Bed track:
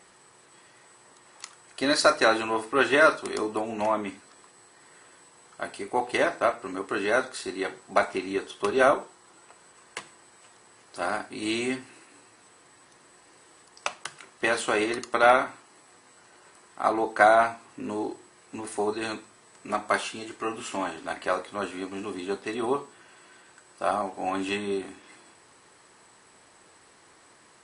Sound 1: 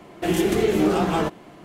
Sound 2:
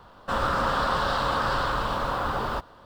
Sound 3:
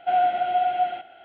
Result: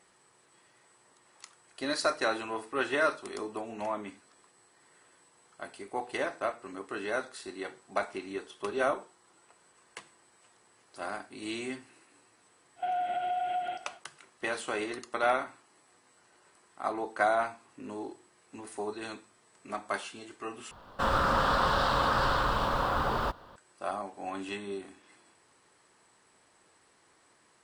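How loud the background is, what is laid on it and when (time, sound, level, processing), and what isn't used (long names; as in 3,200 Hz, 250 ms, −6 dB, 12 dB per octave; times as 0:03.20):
bed track −8.5 dB
0:12.76: mix in 3 −2 dB, fades 0.05 s + downward compressor, threshold −27 dBFS
0:20.71: overwrite with 2 −1.5 dB
not used: 1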